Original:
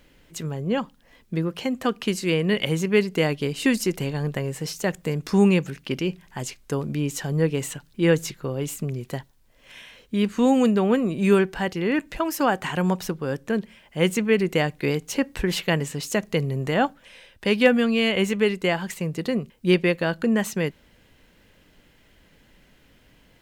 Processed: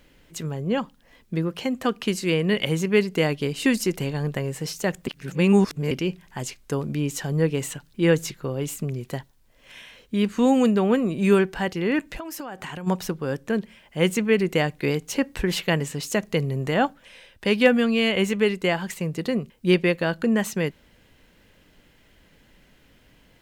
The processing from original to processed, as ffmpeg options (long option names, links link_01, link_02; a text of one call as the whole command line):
ffmpeg -i in.wav -filter_complex "[0:a]asplit=3[link_01][link_02][link_03];[link_01]afade=type=out:start_time=12.18:duration=0.02[link_04];[link_02]acompressor=threshold=-30dB:ratio=16:attack=3.2:release=140:knee=1:detection=peak,afade=type=in:start_time=12.18:duration=0.02,afade=type=out:start_time=12.86:duration=0.02[link_05];[link_03]afade=type=in:start_time=12.86:duration=0.02[link_06];[link_04][link_05][link_06]amix=inputs=3:normalize=0,asplit=3[link_07][link_08][link_09];[link_07]atrim=end=5.072[link_10];[link_08]atrim=start=5.068:end=5.912,asetpts=PTS-STARTPTS,areverse[link_11];[link_09]atrim=start=5.908[link_12];[link_10][link_11]acrossfade=duration=0.004:curve1=hsin:curve2=hsin[link_13];[link_13][link_12]acrossfade=duration=0.004:curve1=hsin:curve2=hsin" out.wav